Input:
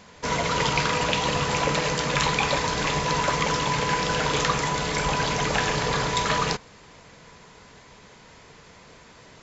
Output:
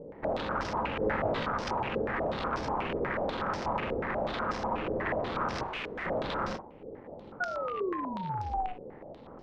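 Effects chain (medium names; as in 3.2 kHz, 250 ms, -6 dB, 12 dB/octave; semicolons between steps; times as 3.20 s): median filter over 41 samples; tilt EQ -1.5 dB/octave; in parallel at -1 dB: compression, threshold -41 dBFS, peak gain reduction 21 dB; 5.63–6.06 s: on the sum: integer overflow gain 30 dB; 7.40–8.73 s: painted sound fall 360–1100 Hz -30 dBFS; ring modulator 370 Hz; wavefolder -27 dBFS; 0.99–1.49 s: doubling 19 ms -2 dB; on a send: flutter echo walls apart 7.7 m, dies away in 0.25 s; on the sum: step-sequenced low-pass 8.2 Hz 470–5400 Hz; trim -3 dB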